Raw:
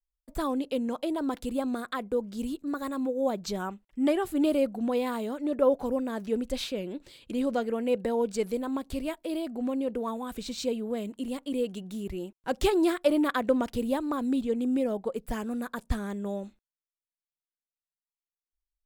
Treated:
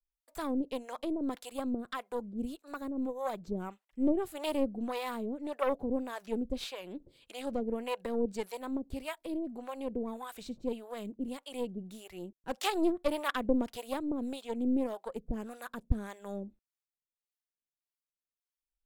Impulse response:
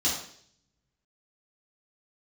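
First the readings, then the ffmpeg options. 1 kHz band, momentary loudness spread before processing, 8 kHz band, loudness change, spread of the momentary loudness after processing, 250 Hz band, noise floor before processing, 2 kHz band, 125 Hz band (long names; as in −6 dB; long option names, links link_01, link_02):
−4.5 dB, 10 LU, −6.0 dB, −6.0 dB, 12 LU, −5.5 dB, below −85 dBFS, −4.0 dB, −3.5 dB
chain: -filter_complex "[0:a]aeval=exprs='0.266*(cos(1*acos(clip(val(0)/0.266,-1,1)))-cos(1*PI/2))+0.0473*(cos(4*acos(clip(val(0)/0.266,-1,1)))-cos(4*PI/2))':channel_layout=same,acrossover=split=580[link_01][link_02];[link_01]aeval=exprs='val(0)*(1-1/2+1/2*cos(2*PI*1.7*n/s))':channel_layout=same[link_03];[link_02]aeval=exprs='val(0)*(1-1/2-1/2*cos(2*PI*1.7*n/s))':channel_layout=same[link_04];[link_03][link_04]amix=inputs=2:normalize=0,volume=-1.5dB"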